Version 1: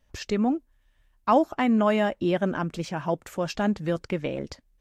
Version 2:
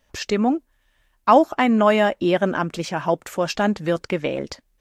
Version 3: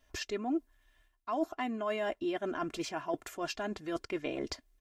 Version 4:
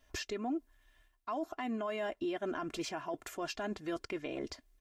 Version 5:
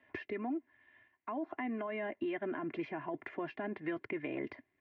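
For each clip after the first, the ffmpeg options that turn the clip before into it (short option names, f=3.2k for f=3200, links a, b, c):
-af "lowshelf=f=200:g=-9.5,volume=7.5dB"
-af "areverse,acompressor=threshold=-26dB:ratio=10,areverse,aecho=1:1:2.9:0.68,volume=-6.5dB"
-af "alimiter=level_in=6dB:limit=-24dB:level=0:latency=1:release=104,volume=-6dB,volume=1dB"
-filter_complex "[0:a]acrossover=split=310|740[a][b][c];[a]acompressor=threshold=-47dB:ratio=4[d];[b]acompressor=threshold=-46dB:ratio=4[e];[c]acompressor=threshold=-48dB:ratio=4[f];[d][e][f]amix=inputs=3:normalize=0,highpass=f=120:w=0.5412,highpass=f=120:w=1.3066,equalizer=f=190:t=q:w=4:g=-4,equalizer=f=490:t=q:w=4:g=-5,equalizer=f=700:t=q:w=4:g=-4,equalizer=f=1.3k:t=q:w=4:g=-9,equalizer=f=2k:t=q:w=4:g=7,lowpass=f=2.3k:w=0.5412,lowpass=f=2.3k:w=1.3066,volume=6.5dB"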